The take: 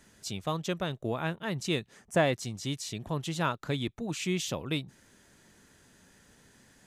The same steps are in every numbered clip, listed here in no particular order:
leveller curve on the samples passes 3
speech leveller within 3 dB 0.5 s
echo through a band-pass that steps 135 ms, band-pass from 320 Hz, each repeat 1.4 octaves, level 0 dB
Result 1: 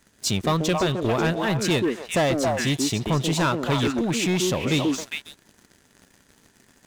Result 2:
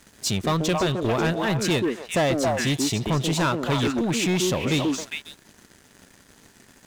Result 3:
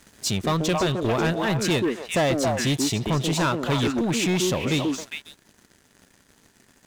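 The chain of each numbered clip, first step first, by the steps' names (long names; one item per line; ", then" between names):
echo through a band-pass that steps, then leveller curve on the samples, then speech leveller
echo through a band-pass that steps, then speech leveller, then leveller curve on the samples
speech leveller, then echo through a band-pass that steps, then leveller curve on the samples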